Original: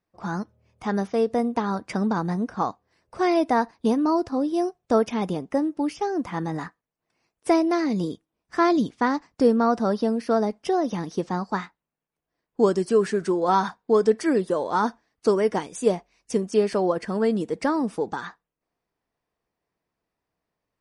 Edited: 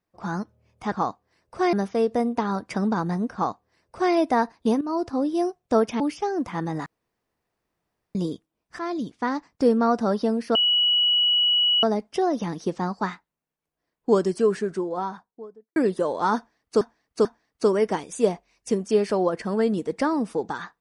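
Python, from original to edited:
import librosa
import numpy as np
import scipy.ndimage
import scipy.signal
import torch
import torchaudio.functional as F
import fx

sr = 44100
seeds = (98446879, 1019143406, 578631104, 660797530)

y = fx.studio_fade_out(x, sr, start_s=12.64, length_s=1.63)
y = fx.edit(y, sr, fx.duplicate(start_s=2.52, length_s=0.81, to_s=0.92),
    fx.fade_in_from(start_s=4.0, length_s=0.27, floor_db=-13.5),
    fx.cut(start_s=5.19, length_s=0.6),
    fx.room_tone_fill(start_s=6.65, length_s=1.29),
    fx.fade_in_from(start_s=8.58, length_s=1.25, curve='qsin', floor_db=-12.5),
    fx.insert_tone(at_s=10.34, length_s=1.28, hz=2930.0, db=-17.0),
    fx.repeat(start_s=14.88, length_s=0.44, count=3), tone=tone)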